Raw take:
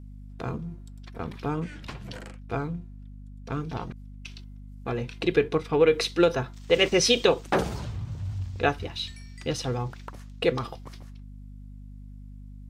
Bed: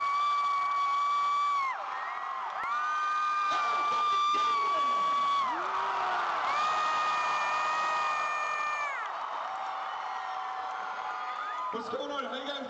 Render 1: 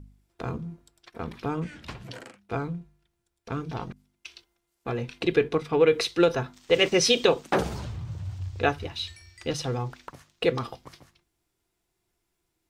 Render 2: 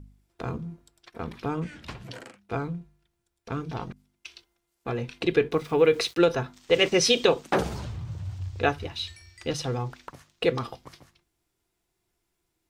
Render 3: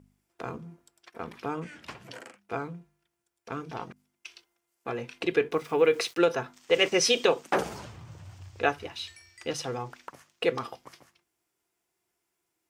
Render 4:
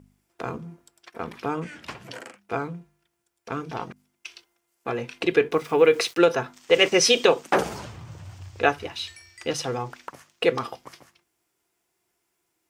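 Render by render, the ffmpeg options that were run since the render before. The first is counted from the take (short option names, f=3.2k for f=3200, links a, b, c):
-af "bandreject=f=50:t=h:w=4,bandreject=f=100:t=h:w=4,bandreject=f=150:t=h:w=4,bandreject=f=200:t=h:w=4,bandreject=f=250:t=h:w=4"
-filter_complex "[0:a]asettb=1/sr,asplit=3[a][b][c];[a]atrim=end=5.514[d];[b]atrim=start=5.51:end=6.19,asetpts=PTS-STARTPTS,afade=t=in:d=0.004:c=qsin,afade=t=out:st=0.676:d=0.004:c=qsin,aeval=exprs='val(0)*gte(abs(val(0)),0.00501)':c=same[e];[c]atrim=start=6.186[f];[d][e]acrossfade=d=0.004:c1=hsin:c2=qsin[g];[g][f]acrossfade=d=0.004:c1=qsin:c2=hsin"
-af "highpass=f=390:p=1,equalizer=f=3.9k:w=2.8:g=-5.5"
-af "volume=5dB"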